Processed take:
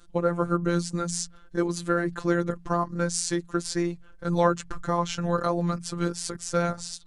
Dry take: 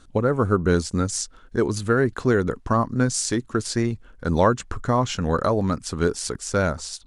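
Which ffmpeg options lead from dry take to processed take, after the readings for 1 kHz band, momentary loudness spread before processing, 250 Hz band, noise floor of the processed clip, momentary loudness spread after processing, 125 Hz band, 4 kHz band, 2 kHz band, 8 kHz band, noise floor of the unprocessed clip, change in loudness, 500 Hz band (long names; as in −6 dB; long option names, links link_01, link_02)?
−3.5 dB, 6 LU, −4.0 dB, −50 dBFS, 5 LU, −6.0 dB, −3.5 dB, −5.0 dB, −3.5 dB, −50 dBFS, −4.5 dB, −5.0 dB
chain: -af "bandreject=frequency=45.02:width_type=h:width=4,bandreject=frequency=90.04:width_type=h:width=4,bandreject=frequency=135.06:width_type=h:width=4,bandreject=frequency=180.08:width_type=h:width=4,afftfilt=real='hypot(re,im)*cos(PI*b)':imag='0':win_size=1024:overlap=0.75"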